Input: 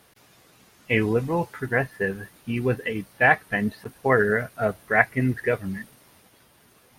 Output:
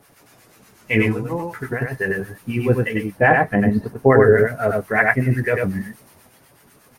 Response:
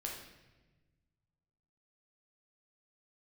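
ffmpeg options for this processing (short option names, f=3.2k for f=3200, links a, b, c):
-filter_complex "[0:a]acrossover=split=910[a][b];[a]aeval=exprs='val(0)*(1-0.7/2+0.7/2*cos(2*PI*8.1*n/s))':c=same[c];[b]aeval=exprs='val(0)*(1-0.7/2-0.7/2*cos(2*PI*8.1*n/s))':c=same[d];[c][d]amix=inputs=2:normalize=0,asettb=1/sr,asplit=3[e][f][g];[e]atrim=end=1.064[h];[f]atrim=start=1.06:end=1.82,asetpts=PTS-STARTPTS,afade=t=in:d=0.004:c=qsin,afade=t=out:st=0.756:d=0.004:c=qsin,acompressor=threshold=-30dB:ratio=6[i];[g]atrim=start=1.816[j];[h][i]acrossfade=d=0.004:c1=hsin:c2=qsin[k];[k][j]acrossfade=d=0.004:c1=qsin:c2=hsin,asettb=1/sr,asplit=3[l][m][n];[l]atrim=end=3.114[o];[m]atrim=start=3.11:end=4.38,asetpts=PTS-STARTPTS,afade=t=in:d=0.004:c=qsin,afade=t=out:st=1.266:d=0.004:c=qsin,tiltshelf=f=970:g=6.5[p];[n]atrim=start=4.376[q];[o][p]acrossfade=d=0.004:c1=hsin:c2=qsin[r];[r][q]acrossfade=d=0.004:c1=qsin:c2=hsin,aecho=1:1:95:0.708,flanger=delay=7.1:depth=3:regen=-48:speed=0.45:shape=sinusoidal,equalizer=f=3.5k:w=1.7:g=-6,alimiter=level_in=12dB:limit=-1dB:release=50:level=0:latency=1,volume=-1dB"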